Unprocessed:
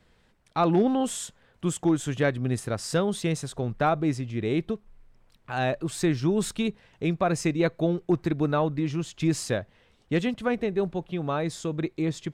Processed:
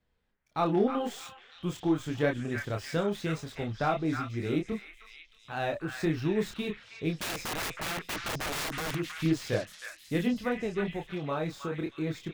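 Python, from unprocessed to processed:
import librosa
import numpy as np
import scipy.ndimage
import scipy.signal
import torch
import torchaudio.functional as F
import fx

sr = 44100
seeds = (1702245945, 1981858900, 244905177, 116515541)

y = scipy.ndimage.median_filter(x, 5, mode='constant')
y = fx.noise_reduce_blind(y, sr, reduce_db=11)
y = fx.chorus_voices(y, sr, voices=6, hz=0.88, base_ms=27, depth_ms=2.4, mix_pct=40)
y = fx.overflow_wrap(y, sr, gain_db=28.0, at=(7.18, 8.95))
y = fx.echo_stepped(y, sr, ms=316, hz=1700.0, octaves=0.7, feedback_pct=70, wet_db=-2.0)
y = F.gain(torch.from_numpy(y), -1.5).numpy()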